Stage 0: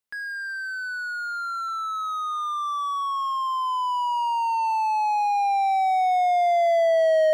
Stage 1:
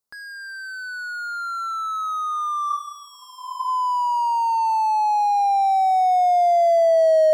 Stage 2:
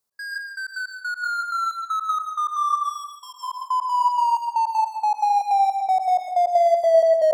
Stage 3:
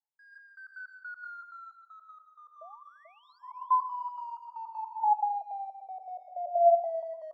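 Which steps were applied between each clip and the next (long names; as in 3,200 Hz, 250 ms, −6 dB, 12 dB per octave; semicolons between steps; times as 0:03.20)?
healed spectral selection 0:02.72–0:03.66, 950–2,000 Hz both; flat-topped bell 2,400 Hz −11 dB 1.3 octaves; level +3.5 dB
downward compressor 1.5 to 1, threshold −29 dBFS, peak gain reduction 5.5 dB; gate pattern "x.xx..x.x..x.x" 158 BPM −60 dB; convolution reverb RT60 0.50 s, pre-delay 105 ms, DRR 3.5 dB; level +4.5 dB
sound drawn into the spectrogram rise, 0:02.61–0:03.39, 620–4,900 Hz −29 dBFS; single-tap delay 435 ms −17.5 dB; LFO wah 0.29 Hz 510–1,300 Hz, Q 16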